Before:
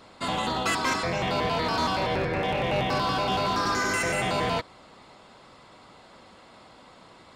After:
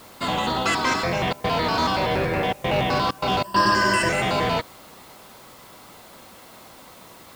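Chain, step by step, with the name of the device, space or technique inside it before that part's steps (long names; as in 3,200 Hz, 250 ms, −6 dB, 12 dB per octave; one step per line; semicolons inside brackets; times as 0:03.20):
worn cassette (low-pass filter 7,700 Hz; tape wow and flutter 23 cents; tape dropouts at 0:01.33/0:02.53/0:03.11/0:03.43, 110 ms −22 dB; white noise bed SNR 26 dB)
0:03.44–0:04.09: EQ curve with evenly spaced ripples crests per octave 1.3, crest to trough 15 dB
level +4 dB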